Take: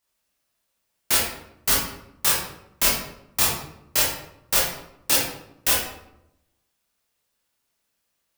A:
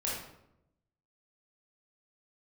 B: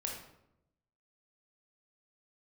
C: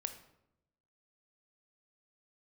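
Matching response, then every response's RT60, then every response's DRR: A; 0.85, 0.85, 0.85 seconds; −6.0, −0.5, 8.0 decibels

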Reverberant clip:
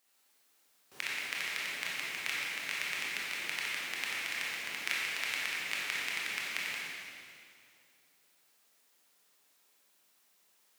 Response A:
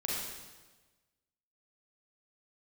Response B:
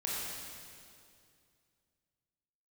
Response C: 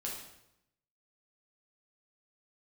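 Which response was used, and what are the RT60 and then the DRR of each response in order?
B; 1.3, 2.4, 0.85 seconds; −5.0, −6.5, −3.5 decibels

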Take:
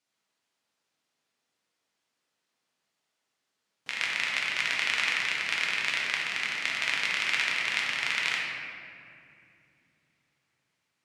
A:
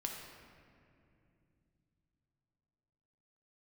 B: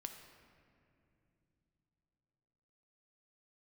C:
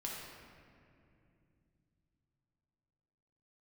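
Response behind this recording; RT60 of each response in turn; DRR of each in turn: C; 2.6 s, non-exponential decay, 2.6 s; 0.5, 5.0, −3.5 decibels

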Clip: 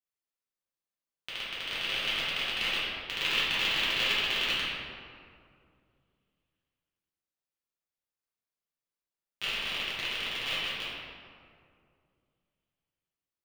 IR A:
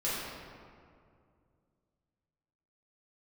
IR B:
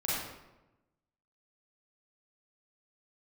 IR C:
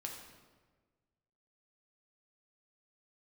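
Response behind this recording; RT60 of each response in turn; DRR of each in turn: A; 2.3, 1.0, 1.4 seconds; −10.5, −8.5, 0.5 decibels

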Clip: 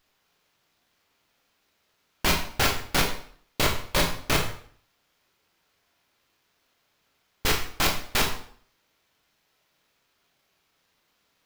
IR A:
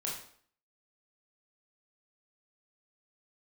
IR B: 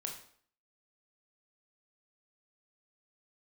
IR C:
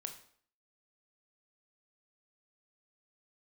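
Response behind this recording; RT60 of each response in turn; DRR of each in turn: B; 0.55, 0.55, 0.55 seconds; −4.0, 1.0, 5.0 decibels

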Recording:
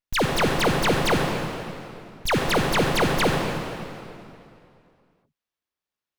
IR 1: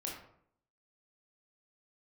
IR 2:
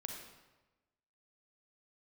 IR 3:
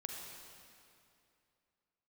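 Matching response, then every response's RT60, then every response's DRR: 3; 0.65, 1.1, 2.6 seconds; −2.5, 1.5, 0.5 decibels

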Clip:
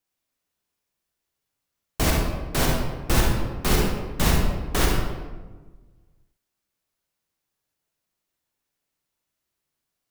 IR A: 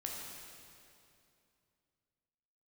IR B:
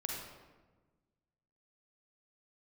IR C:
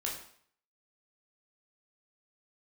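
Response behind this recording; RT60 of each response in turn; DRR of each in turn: B; 2.6, 1.3, 0.60 seconds; −2.0, −1.5, −3.0 decibels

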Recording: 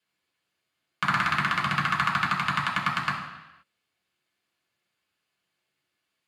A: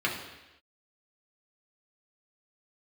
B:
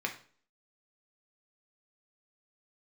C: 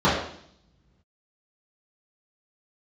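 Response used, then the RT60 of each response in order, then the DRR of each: A; non-exponential decay, 0.45 s, 0.65 s; −3.5, 1.5, −11.5 decibels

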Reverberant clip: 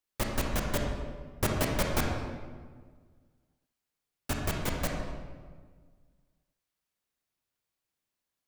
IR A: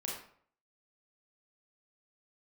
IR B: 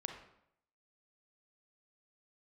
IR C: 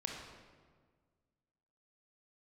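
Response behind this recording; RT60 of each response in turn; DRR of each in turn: C; 0.55, 0.75, 1.6 seconds; −3.5, 4.0, 0.0 decibels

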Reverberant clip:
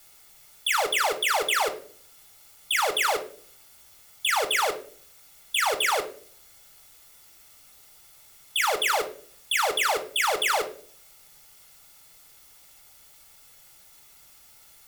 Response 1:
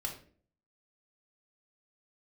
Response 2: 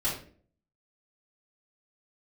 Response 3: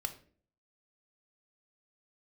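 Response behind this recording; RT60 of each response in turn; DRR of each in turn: 3; 0.45, 0.45, 0.45 seconds; 0.0, −9.5, 7.0 decibels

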